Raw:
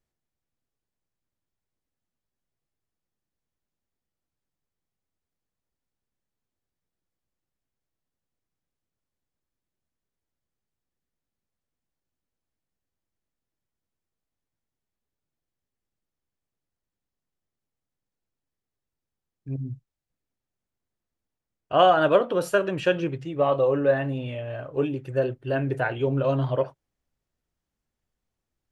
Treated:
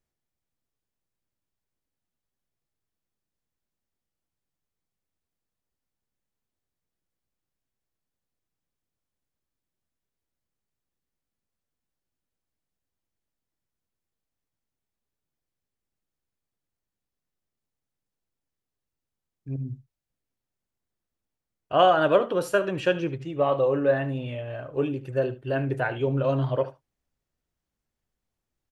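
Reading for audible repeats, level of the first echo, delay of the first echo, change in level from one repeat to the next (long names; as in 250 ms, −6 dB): 1, −16.0 dB, 74 ms, repeats not evenly spaced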